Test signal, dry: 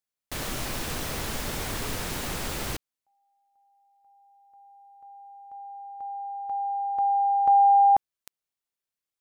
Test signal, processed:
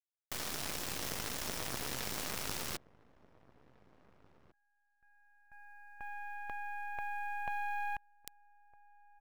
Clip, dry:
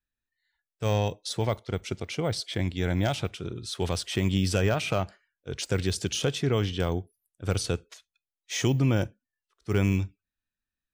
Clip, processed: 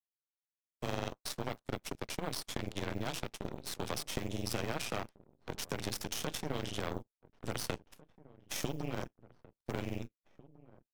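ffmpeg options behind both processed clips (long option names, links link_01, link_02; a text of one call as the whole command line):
ffmpeg -i in.wav -filter_complex "[0:a]highpass=frequency=74:poles=1,adynamicequalizer=threshold=0.00224:dfrequency=5400:dqfactor=5.4:tfrequency=5400:tqfactor=5.4:attack=5:release=100:ratio=0.375:range=3:mode=boostabove:tftype=bell,acompressor=threshold=-35dB:ratio=6:attack=6.3:release=31:knee=1:detection=peak,afreqshift=21,aeval=exprs='0.112*(cos(1*acos(clip(val(0)/0.112,-1,1)))-cos(1*PI/2))+0.00398*(cos(2*acos(clip(val(0)/0.112,-1,1)))-cos(2*PI/2))+0.0126*(cos(6*acos(clip(val(0)/0.112,-1,1)))-cos(6*PI/2))+0.0158*(cos(7*acos(clip(val(0)/0.112,-1,1)))-cos(7*PI/2))':channel_layout=same,acrusher=bits=8:mode=log:mix=0:aa=0.000001,asplit=2[link_01][link_02];[link_02]adelay=1749,volume=-20dB,highshelf=frequency=4000:gain=-39.4[link_03];[link_01][link_03]amix=inputs=2:normalize=0,volume=1dB" out.wav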